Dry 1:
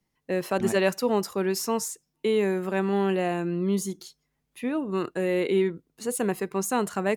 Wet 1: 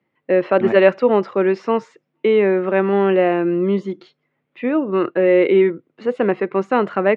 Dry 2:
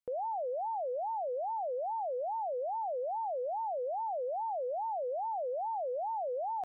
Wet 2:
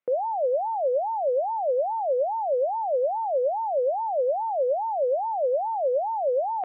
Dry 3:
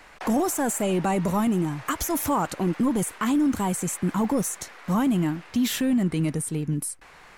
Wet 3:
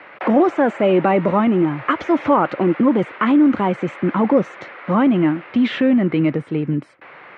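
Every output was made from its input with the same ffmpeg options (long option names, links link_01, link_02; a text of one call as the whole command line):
ffmpeg -i in.wav -af "highpass=frequency=120:width=0.5412,highpass=frequency=120:width=1.3066,equalizer=frequency=170:width_type=q:width=4:gain=-4,equalizer=frequency=340:width_type=q:width=4:gain=5,equalizer=frequency=550:width_type=q:width=4:gain=7,equalizer=frequency=1300:width_type=q:width=4:gain=4,equalizer=frequency=2100:width_type=q:width=4:gain=4,lowpass=frequency=3000:width=0.5412,lowpass=frequency=3000:width=1.3066,volume=6.5dB" out.wav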